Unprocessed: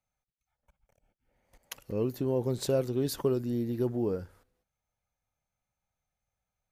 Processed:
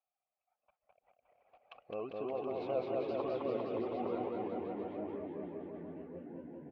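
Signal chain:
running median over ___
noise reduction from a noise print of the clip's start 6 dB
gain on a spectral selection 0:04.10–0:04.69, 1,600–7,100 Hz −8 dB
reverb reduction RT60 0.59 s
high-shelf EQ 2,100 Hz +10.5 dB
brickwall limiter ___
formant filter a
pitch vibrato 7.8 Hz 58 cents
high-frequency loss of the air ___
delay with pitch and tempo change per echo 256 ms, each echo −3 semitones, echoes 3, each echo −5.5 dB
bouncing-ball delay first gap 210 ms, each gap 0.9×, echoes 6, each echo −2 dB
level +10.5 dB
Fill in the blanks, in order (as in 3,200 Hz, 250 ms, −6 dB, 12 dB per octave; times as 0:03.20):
5 samples, −25.5 dBFS, 330 metres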